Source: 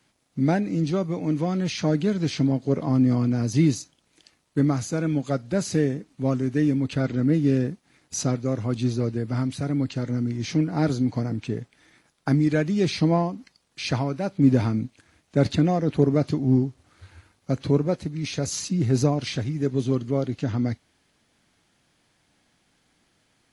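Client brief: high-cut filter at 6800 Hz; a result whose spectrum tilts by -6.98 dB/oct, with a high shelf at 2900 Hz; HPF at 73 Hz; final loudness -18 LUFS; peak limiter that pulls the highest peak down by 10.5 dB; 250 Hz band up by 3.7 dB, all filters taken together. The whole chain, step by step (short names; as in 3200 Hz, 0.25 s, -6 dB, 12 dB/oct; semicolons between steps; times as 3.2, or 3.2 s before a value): HPF 73 Hz; LPF 6800 Hz; bell 250 Hz +4.5 dB; high shelf 2900 Hz +4 dB; gain +6.5 dB; limiter -8 dBFS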